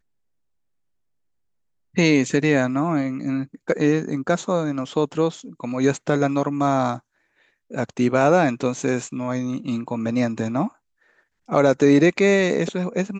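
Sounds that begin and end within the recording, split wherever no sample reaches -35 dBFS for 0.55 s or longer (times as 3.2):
1.96–6.99
7.71–10.68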